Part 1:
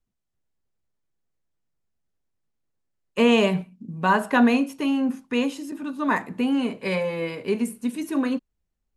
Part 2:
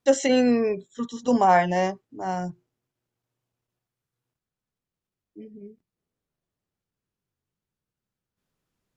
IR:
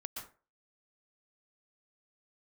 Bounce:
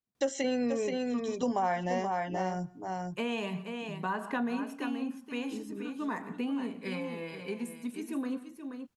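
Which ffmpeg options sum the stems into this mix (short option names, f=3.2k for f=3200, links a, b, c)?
-filter_complex "[0:a]highpass=130,bandreject=f=570:w=12,aphaser=in_gain=1:out_gain=1:delay=1.3:decay=0.32:speed=0.47:type=sinusoidal,volume=-11.5dB,asplit=3[a][b][c];[b]volume=-10dB[d];[c]volume=-8.5dB[e];[1:a]adelay=150,volume=0.5dB,asplit=3[f][g][h];[g]volume=-21.5dB[i];[h]volume=-7dB[j];[2:a]atrim=start_sample=2205[k];[d][i]amix=inputs=2:normalize=0[l];[l][k]afir=irnorm=-1:irlink=0[m];[e][j]amix=inputs=2:normalize=0,aecho=0:1:478:1[n];[a][f][m][n]amix=inputs=4:normalize=0,acompressor=threshold=-31dB:ratio=3"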